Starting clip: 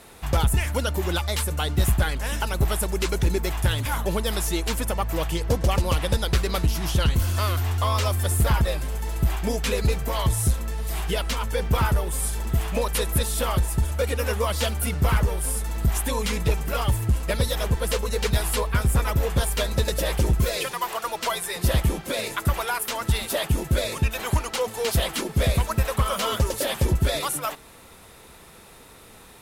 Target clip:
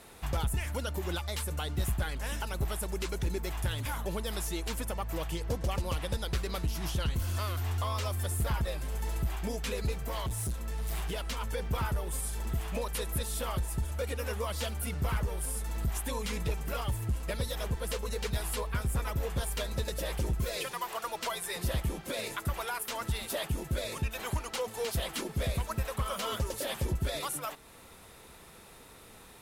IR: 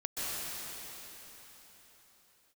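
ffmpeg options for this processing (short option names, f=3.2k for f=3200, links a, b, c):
-filter_complex "[0:a]alimiter=limit=-19.5dB:level=0:latency=1:release=332,asettb=1/sr,asplit=3[a][b][c];[a]atrim=end=9.924[d];[b]atrim=start=9.92:end=11.24,asetpts=PTS-STARTPTS,afade=t=in:d=0.004:c=qsin,afade=t=out:st=1.316:d=0.004:c=qsin,asoftclip=type=hard:threshold=-25dB[e];[c]atrim=start=11.236[f];[d][e]acrossfade=d=0.004:c1=hsin:c2=qsin[g];[g][f]acrossfade=d=0.004:c1=qsin:c2=hsin,volume=-5dB"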